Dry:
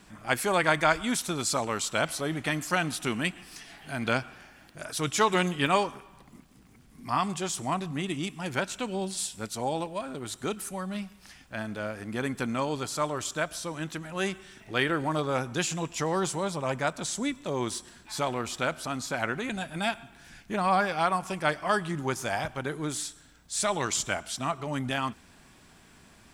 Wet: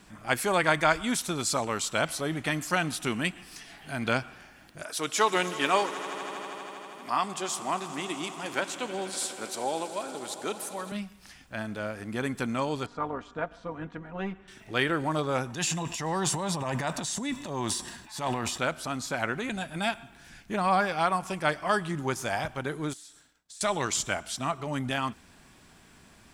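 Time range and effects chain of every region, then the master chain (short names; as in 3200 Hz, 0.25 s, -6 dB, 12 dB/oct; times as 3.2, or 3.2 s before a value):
4.83–10.92 HPF 300 Hz + swelling echo 80 ms, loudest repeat 5, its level -18 dB
12.86–14.48 LPF 1500 Hz + comb 4.2 ms + AM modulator 200 Hz, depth 35%
15.5–18.58 transient shaper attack -8 dB, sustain +9 dB + low shelf 61 Hz -11.5 dB + comb 1.1 ms, depth 36%
22.93–23.61 low shelf 210 Hz -11 dB + compressor 16:1, threshold -44 dBFS + expander -54 dBFS
whole clip: dry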